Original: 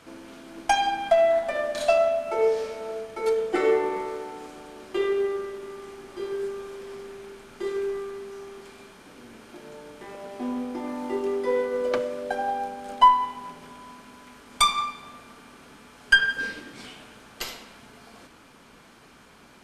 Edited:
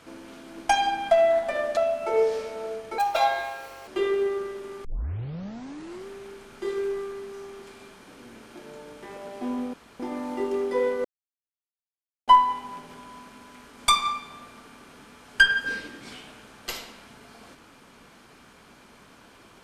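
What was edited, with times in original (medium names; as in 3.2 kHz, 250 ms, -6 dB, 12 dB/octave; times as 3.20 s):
1.77–2.02 s: delete
3.23–4.86 s: speed 182%
5.83 s: tape start 1.22 s
10.72 s: insert room tone 0.26 s
11.77–13.00 s: mute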